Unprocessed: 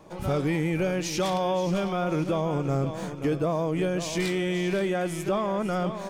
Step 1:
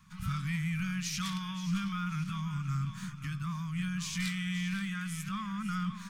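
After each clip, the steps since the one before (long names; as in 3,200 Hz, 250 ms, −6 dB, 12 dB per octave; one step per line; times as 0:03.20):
elliptic band-stop filter 200–1,200 Hz, stop band 40 dB
level −3.5 dB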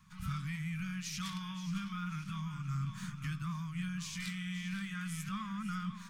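speech leveller 0.5 s
flanger 0.84 Hz, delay 0.9 ms, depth 8.2 ms, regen −74%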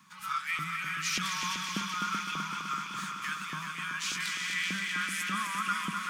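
auto-filter high-pass saw up 1.7 Hz 290–2,800 Hz
echo machine with several playback heads 127 ms, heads second and third, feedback 68%, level −6.5 dB
level +7.5 dB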